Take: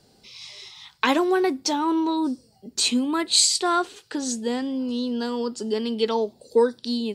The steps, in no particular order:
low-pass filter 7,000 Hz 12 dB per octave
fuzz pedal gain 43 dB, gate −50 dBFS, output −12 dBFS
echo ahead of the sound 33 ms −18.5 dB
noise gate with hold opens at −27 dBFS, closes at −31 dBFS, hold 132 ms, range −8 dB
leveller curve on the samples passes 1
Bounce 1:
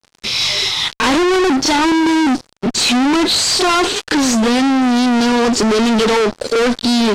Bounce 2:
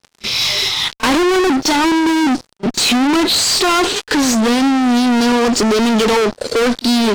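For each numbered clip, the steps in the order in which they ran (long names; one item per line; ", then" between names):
echo ahead of the sound, then fuzz pedal, then noise gate with hold, then leveller curve on the samples, then low-pass filter
fuzz pedal, then low-pass filter, then leveller curve on the samples, then echo ahead of the sound, then noise gate with hold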